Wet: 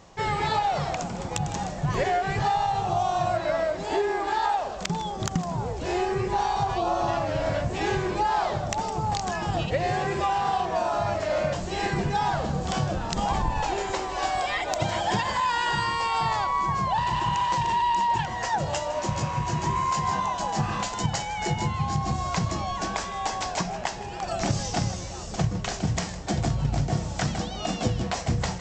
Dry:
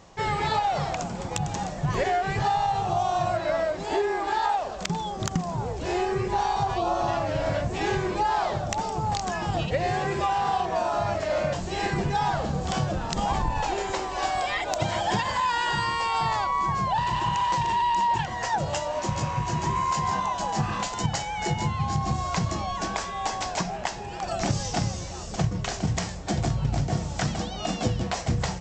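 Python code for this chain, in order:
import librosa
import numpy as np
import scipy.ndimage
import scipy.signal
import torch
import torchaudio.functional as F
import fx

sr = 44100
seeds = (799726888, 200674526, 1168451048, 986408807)

y = x + 10.0 ** (-16.0 / 20.0) * np.pad(x, (int(157 * sr / 1000.0), 0))[:len(x)]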